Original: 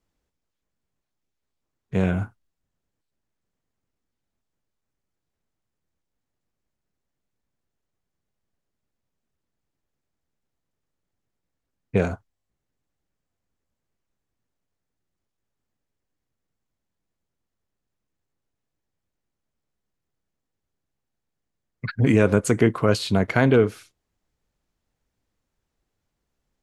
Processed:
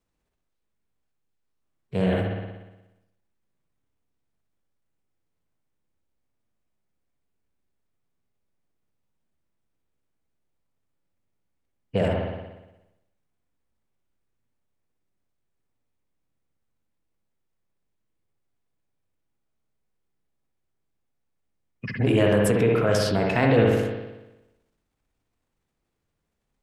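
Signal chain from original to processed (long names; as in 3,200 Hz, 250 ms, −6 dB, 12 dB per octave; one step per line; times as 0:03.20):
formants moved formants +3 semitones
spring reverb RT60 1 s, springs 59 ms, chirp 20 ms, DRR 0.5 dB
transient designer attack 0 dB, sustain +7 dB
level −4 dB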